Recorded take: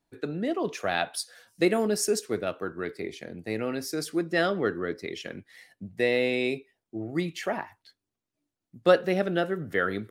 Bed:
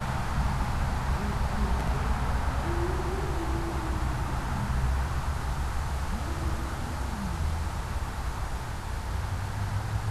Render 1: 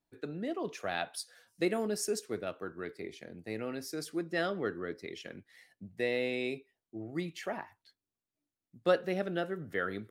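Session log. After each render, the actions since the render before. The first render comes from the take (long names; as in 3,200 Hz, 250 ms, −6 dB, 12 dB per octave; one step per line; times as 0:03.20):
level −7.5 dB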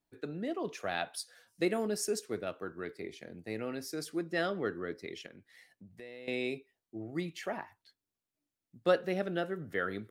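0:05.26–0:06.28: downward compressor 2.5 to 1, threshold −52 dBFS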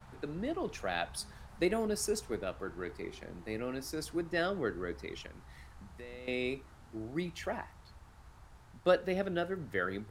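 mix in bed −23.5 dB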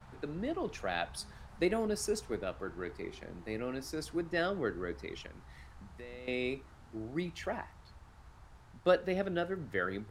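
high-shelf EQ 9,800 Hz −7.5 dB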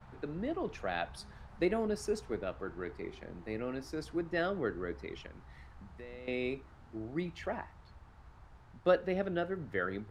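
high-shelf EQ 5,000 Hz −11.5 dB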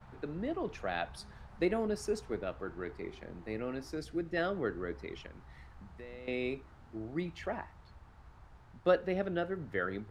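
0:03.97–0:04.37: parametric band 990 Hz −14.5 dB 0.48 octaves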